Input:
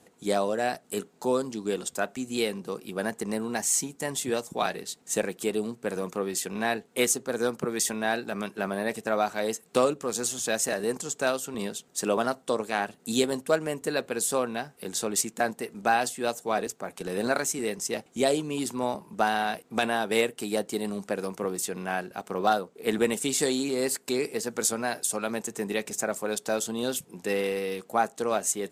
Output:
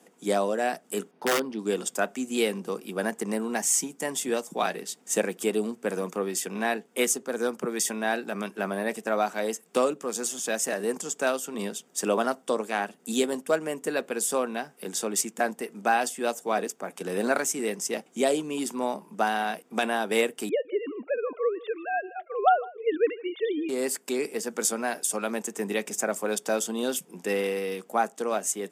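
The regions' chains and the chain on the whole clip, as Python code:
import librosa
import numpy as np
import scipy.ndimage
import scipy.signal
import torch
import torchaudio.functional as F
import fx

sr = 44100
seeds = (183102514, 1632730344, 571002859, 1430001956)

y = fx.chain(x, sr, fx.moving_average(points=6),
    fx.overflow_wrap(gain_db=19.0), at=(1.11, 1.59))
y = fx.chain(y, sr, fx.sine_speech(),
    fx.echo_single(ms=157, db=-20.5), at=(20.49, 23.69))
y = scipy.signal.sosfilt(scipy.signal.butter(6, 170.0, 'highpass', fs=sr, output='sos'), y)
y = fx.notch(y, sr, hz=4100.0, q=6.7)
y = fx.rider(y, sr, range_db=10, speed_s=2.0)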